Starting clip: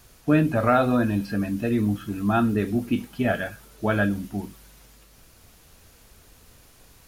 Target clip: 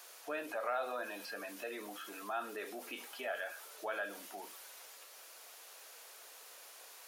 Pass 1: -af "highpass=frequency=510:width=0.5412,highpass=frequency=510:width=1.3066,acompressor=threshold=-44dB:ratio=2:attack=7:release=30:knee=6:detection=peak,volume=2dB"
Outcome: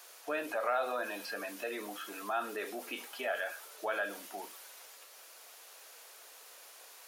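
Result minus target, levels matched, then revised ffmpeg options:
downward compressor: peak gain reduction −4.5 dB
-af "highpass=frequency=510:width=0.5412,highpass=frequency=510:width=1.3066,acompressor=threshold=-53dB:ratio=2:attack=7:release=30:knee=6:detection=peak,volume=2dB"

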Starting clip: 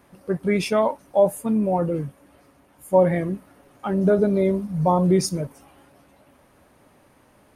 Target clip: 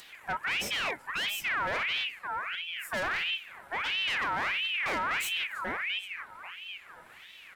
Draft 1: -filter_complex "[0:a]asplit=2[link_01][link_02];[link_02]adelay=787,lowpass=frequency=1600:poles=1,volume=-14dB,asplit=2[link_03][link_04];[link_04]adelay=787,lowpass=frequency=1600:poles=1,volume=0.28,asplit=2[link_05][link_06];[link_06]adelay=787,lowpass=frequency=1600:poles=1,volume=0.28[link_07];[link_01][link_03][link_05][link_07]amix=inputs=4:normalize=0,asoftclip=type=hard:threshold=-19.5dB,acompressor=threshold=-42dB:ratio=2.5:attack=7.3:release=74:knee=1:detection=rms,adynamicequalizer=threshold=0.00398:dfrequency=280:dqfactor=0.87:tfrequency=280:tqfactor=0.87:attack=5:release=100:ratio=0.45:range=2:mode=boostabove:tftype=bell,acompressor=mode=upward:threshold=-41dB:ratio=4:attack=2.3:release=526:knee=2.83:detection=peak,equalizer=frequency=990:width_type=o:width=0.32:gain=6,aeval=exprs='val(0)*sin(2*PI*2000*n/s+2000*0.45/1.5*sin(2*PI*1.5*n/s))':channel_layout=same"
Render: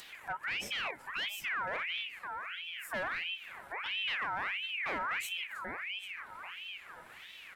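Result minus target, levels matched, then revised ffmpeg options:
downward compressor: peak gain reduction +13.5 dB; hard clipping: distortion −6 dB
-filter_complex "[0:a]asplit=2[link_01][link_02];[link_02]adelay=787,lowpass=frequency=1600:poles=1,volume=-14dB,asplit=2[link_03][link_04];[link_04]adelay=787,lowpass=frequency=1600:poles=1,volume=0.28,asplit=2[link_05][link_06];[link_06]adelay=787,lowpass=frequency=1600:poles=1,volume=0.28[link_07];[link_01][link_03][link_05][link_07]amix=inputs=4:normalize=0,asoftclip=type=hard:threshold=-29.5dB,adynamicequalizer=threshold=0.00398:dfrequency=280:dqfactor=0.87:tfrequency=280:tqfactor=0.87:attack=5:release=100:ratio=0.45:range=2:mode=boostabove:tftype=bell,acompressor=mode=upward:threshold=-41dB:ratio=4:attack=2.3:release=526:knee=2.83:detection=peak,equalizer=frequency=990:width_type=o:width=0.32:gain=6,aeval=exprs='val(0)*sin(2*PI*2000*n/s+2000*0.45/1.5*sin(2*PI*1.5*n/s))':channel_layout=same"

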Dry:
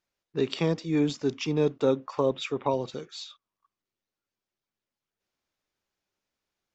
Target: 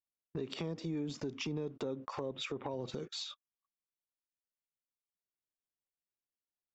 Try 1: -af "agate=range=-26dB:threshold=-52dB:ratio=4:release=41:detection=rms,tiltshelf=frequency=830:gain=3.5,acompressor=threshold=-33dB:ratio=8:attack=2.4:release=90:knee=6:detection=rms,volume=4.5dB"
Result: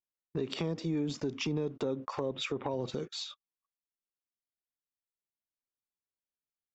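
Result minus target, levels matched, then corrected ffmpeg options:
downward compressor: peak gain reduction −5.5 dB
-af "agate=range=-26dB:threshold=-52dB:ratio=4:release=41:detection=rms,tiltshelf=frequency=830:gain=3.5,acompressor=threshold=-39dB:ratio=8:attack=2.4:release=90:knee=6:detection=rms,volume=4.5dB"

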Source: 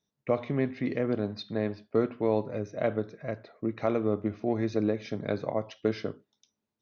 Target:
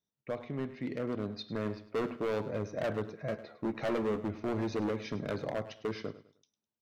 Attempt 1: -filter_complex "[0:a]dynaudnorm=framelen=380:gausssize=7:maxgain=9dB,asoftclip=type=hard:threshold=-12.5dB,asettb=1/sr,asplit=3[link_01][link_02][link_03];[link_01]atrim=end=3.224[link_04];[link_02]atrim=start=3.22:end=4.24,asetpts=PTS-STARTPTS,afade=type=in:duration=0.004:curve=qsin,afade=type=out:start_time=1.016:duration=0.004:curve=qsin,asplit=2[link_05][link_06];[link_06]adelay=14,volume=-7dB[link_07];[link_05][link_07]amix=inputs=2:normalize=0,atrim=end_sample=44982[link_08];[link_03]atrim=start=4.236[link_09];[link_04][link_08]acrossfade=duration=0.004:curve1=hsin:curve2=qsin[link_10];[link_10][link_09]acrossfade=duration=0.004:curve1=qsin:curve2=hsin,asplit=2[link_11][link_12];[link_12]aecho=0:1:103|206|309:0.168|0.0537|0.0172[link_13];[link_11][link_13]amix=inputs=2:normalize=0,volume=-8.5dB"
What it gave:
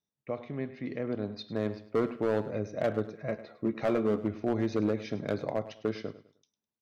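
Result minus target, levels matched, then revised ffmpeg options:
hard clipping: distortion −8 dB
-filter_complex "[0:a]dynaudnorm=framelen=380:gausssize=7:maxgain=9dB,asoftclip=type=hard:threshold=-20dB,asettb=1/sr,asplit=3[link_01][link_02][link_03];[link_01]atrim=end=3.224[link_04];[link_02]atrim=start=3.22:end=4.24,asetpts=PTS-STARTPTS,afade=type=in:duration=0.004:curve=qsin,afade=type=out:start_time=1.016:duration=0.004:curve=qsin,asplit=2[link_05][link_06];[link_06]adelay=14,volume=-7dB[link_07];[link_05][link_07]amix=inputs=2:normalize=0,atrim=end_sample=44982[link_08];[link_03]atrim=start=4.236[link_09];[link_04][link_08]acrossfade=duration=0.004:curve1=hsin:curve2=qsin[link_10];[link_10][link_09]acrossfade=duration=0.004:curve1=qsin:curve2=hsin,asplit=2[link_11][link_12];[link_12]aecho=0:1:103|206|309:0.168|0.0537|0.0172[link_13];[link_11][link_13]amix=inputs=2:normalize=0,volume=-8.5dB"

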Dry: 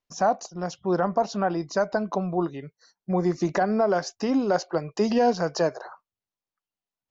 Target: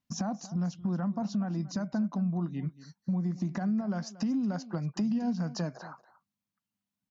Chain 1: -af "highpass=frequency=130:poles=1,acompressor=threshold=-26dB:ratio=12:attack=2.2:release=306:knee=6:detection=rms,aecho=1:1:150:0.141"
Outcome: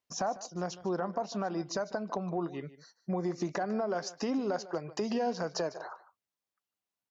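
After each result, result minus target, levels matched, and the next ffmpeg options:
echo 81 ms early; 250 Hz band −4.0 dB
-af "highpass=frequency=130:poles=1,acompressor=threshold=-26dB:ratio=12:attack=2.2:release=306:knee=6:detection=rms,aecho=1:1:231:0.141"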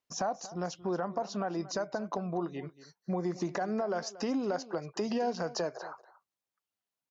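250 Hz band −4.0 dB
-af "highpass=frequency=130:poles=1,lowshelf=frequency=300:width_type=q:width=3:gain=11,acompressor=threshold=-26dB:ratio=12:attack=2.2:release=306:knee=6:detection=rms,aecho=1:1:231:0.141"

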